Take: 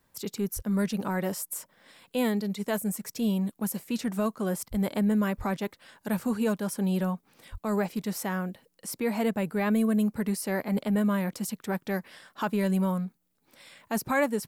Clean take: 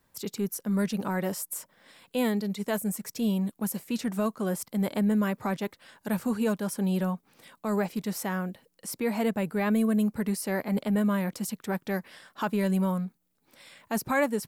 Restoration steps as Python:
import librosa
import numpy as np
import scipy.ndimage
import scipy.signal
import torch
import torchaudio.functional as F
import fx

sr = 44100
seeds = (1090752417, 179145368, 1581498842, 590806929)

y = fx.fix_deplosive(x, sr, at_s=(0.55, 4.7, 5.37, 7.51))